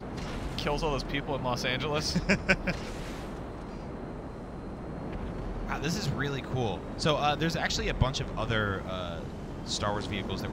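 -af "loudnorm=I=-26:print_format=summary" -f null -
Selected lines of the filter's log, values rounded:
Input Integrated:    -31.8 LUFS
Input True Peak:      -9.8 dBTP
Input LRA:             4.8 LU
Input Threshold:     -41.8 LUFS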